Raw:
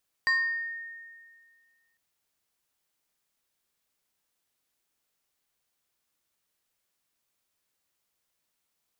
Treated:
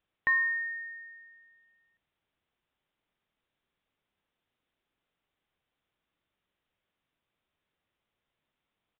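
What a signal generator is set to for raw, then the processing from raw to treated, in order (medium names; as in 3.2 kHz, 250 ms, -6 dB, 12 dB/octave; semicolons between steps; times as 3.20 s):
FM tone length 1.70 s, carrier 1.84 kHz, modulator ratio 1.58, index 0.6, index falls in 0.81 s exponential, decay 1.91 s, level -20 dB
bass shelf 450 Hz +5.5 dB; resampled via 8 kHz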